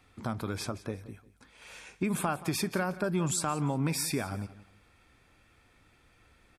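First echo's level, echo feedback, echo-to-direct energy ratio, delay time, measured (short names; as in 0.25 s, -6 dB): -17.0 dB, 26%, -16.5 dB, 0.176 s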